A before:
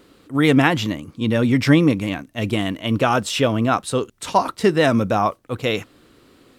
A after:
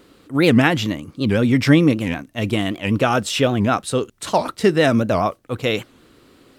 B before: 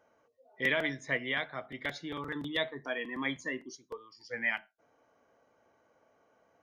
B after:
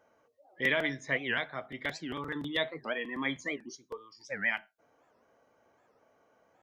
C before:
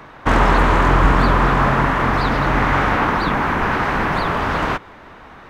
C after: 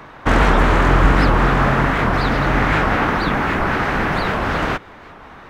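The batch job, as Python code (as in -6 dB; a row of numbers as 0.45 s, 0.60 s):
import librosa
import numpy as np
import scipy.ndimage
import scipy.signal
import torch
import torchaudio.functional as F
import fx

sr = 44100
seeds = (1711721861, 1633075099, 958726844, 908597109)

y = fx.dynamic_eq(x, sr, hz=1000.0, q=3.4, threshold_db=-35.0, ratio=4.0, max_db=-5)
y = fx.record_warp(y, sr, rpm=78.0, depth_cents=250.0)
y = F.gain(torch.from_numpy(y), 1.0).numpy()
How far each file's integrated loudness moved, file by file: +0.5 LU, +1.0 LU, 0.0 LU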